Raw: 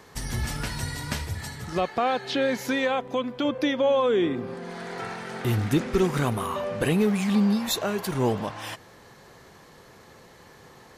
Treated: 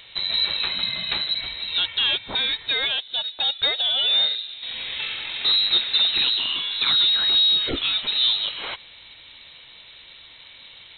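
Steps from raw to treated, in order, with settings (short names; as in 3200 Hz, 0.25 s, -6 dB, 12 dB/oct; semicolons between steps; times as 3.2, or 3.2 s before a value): bell 560 Hz -5.5 dB 0.31 oct; soft clip -19.5 dBFS, distortion -15 dB; inverted band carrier 4000 Hz; 2.15–4.63 upward expander 1.5:1, over -37 dBFS; gain +5.5 dB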